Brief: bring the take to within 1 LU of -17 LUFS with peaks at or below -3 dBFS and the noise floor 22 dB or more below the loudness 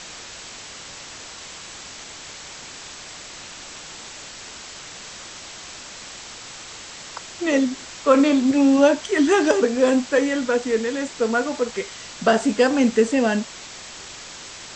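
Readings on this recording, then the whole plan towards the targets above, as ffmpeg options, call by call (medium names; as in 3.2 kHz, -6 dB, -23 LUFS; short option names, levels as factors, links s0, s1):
noise floor -39 dBFS; noise floor target -42 dBFS; loudness -20.0 LUFS; peak level -3.5 dBFS; loudness target -17.0 LUFS
-> -af "afftdn=nr=6:nf=-39"
-af "volume=1.41,alimiter=limit=0.708:level=0:latency=1"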